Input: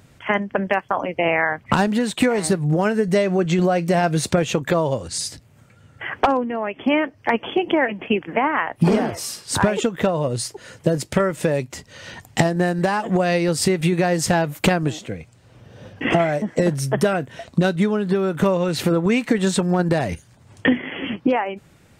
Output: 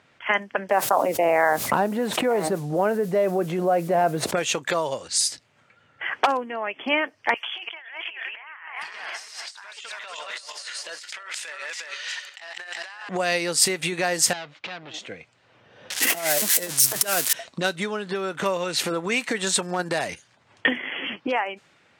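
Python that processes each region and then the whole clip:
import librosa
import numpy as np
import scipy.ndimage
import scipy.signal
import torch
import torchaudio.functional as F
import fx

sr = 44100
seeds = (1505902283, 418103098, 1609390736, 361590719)

y = fx.chain(x, sr, fx.curve_eq(hz=(120.0, 650.0, 6300.0), db=(0, 2, -27)),
    fx.quant_dither(seeds[0], bits=10, dither='triangular'),
    fx.env_flatten(amount_pct=70), at=(0.69, 4.35))
y = fx.chain(y, sr, fx.reverse_delay_fb(ms=177, feedback_pct=46, wet_db=-5.0),
    fx.highpass(hz=1500.0, slope=12),
    fx.over_compress(threshold_db=-37.0, ratio=-1.0), at=(7.34, 13.09))
y = fx.chain(y, sr, fx.overload_stage(gain_db=24.0),
    fx.ladder_lowpass(hz=5200.0, resonance_pct=25), at=(14.33, 14.94))
y = fx.chain(y, sr, fx.crossing_spikes(level_db=-14.0),
    fx.highpass(hz=140.0, slope=12),
    fx.over_compress(threshold_db=-21.0, ratio=-0.5), at=(15.9, 17.33))
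y = fx.highpass(y, sr, hz=1100.0, slope=6)
y = fx.env_lowpass(y, sr, base_hz=2700.0, full_db=-21.5)
y = fx.high_shelf(y, sr, hz=5600.0, db=6.5)
y = F.gain(torch.from_numpy(y), 1.5).numpy()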